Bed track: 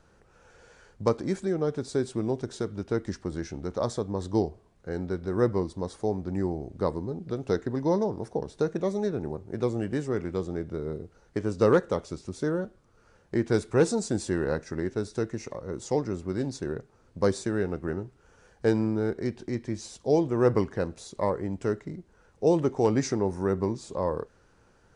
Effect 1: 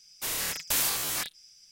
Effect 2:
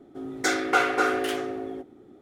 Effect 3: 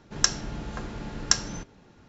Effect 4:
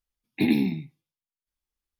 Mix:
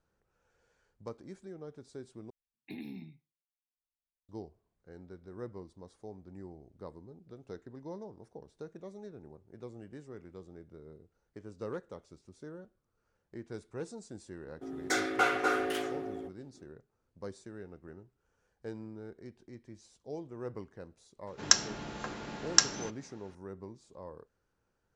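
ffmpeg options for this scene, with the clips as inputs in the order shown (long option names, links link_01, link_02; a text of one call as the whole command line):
ffmpeg -i bed.wav -i cue0.wav -i cue1.wav -i cue2.wav -i cue3.wav -filter_complex "[0:a]volume=-18.5dB[link_01];[4:a]acompressor=threshold=-23dB:ratio=4:attack=4.8:release=70:knee=1:detection=rms[link_02];[2:a]agate=range=-33dB:threshold=-46dB:ratio=3:release=100:detection=peak[link_03];[3:a]highpass=frequency=340:poles=1[link_04];[link_01]asplit=2[link_05][link_06];[link_05]atrim=end=2.304[link_07];[link_02]atrim=end=1.99,asetpts=PTS-STARTPTS,volume=-17dB[link_08];[link_06]atrim=start=4.286[link_09];[link_03]atrim=end=2.21,asetpts=PTS-STARTPTS,volume=-6dB,afade=type=in:duration=0.004:curve=hsin,afade=type=out:start_time=2.206:duration=0.004:curve=hsin,adelay=14460[link_10];[link_04]atrim=end=2.08,asetpts=PTS-STARTPTS,volume=-0.5dB,afade=type=in:duration=0.004:curve=hsin,afade=type=out:start_time=2.076:duration=0.004:curve=hsin,adelay=21270[link_11];[link_07][link_08]acrossfade=duration=0.004:curve1=hsin:curve2=hsin[link_12];[link_12][link_09]acrossfade=duration=0.004:curve1=hsin:curve2=hsin[link_13];[link_13][link_10][link_11]amix=inputs=3:normalize=0" out.wav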